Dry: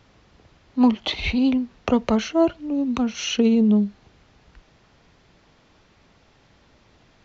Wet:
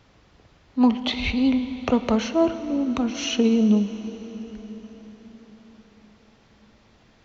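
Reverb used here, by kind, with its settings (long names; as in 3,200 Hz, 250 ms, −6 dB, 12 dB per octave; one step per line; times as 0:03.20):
dense smooth reverb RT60 5 s, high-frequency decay 0.8×, DRR 10 dB
level −1 dB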